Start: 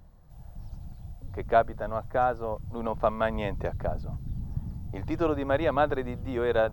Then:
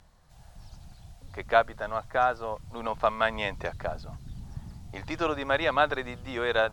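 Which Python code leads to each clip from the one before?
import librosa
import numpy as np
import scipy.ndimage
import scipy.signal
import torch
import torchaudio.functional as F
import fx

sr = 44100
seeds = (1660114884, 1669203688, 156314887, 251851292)

y = scipy.signal.sosfilt(scipy.signal.bessel(2, 7800.0, 'lowpass', norm='mag', fs=sr, output='sos'), x)
y = fx.tilt_shelf(y, sr, db=-9.0, hz=930.0)
y = y * 10.0 ** (2.0 / 20.0)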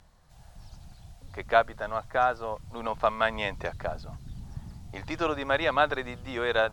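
y = x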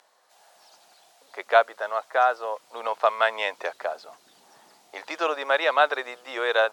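y = scipy.signal.sosfilt(scipy.signal.butter(4, 420.0, 'highpass', fs=sr, output='sos'), x)
y = y * 10.0 ** (4.0 / 20.0)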